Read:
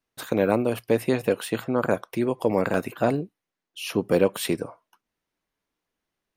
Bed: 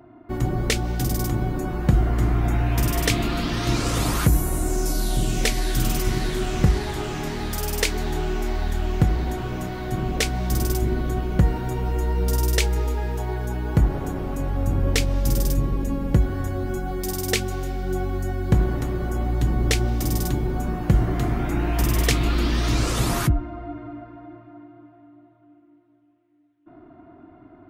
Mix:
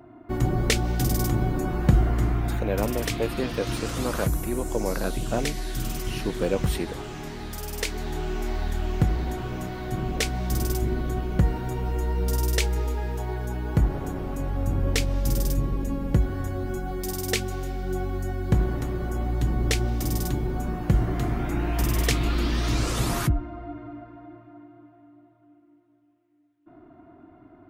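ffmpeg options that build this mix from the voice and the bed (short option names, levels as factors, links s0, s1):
-filter_complex "[0:a]adelay=2300,volume=0.531[s0];[1:a]volume=1.68,afade=t=out:st=1.86:d=0.82:silence=0.421697,afade=t=in:st=7.68:d=0.86:silence=0.595662[s1];[s0][s1]amix=inputs=2:normalize=0"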